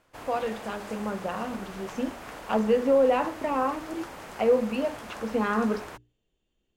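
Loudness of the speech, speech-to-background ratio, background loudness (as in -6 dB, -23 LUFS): -28.0 LUFS, 13.5 dB, -41.5 LUFS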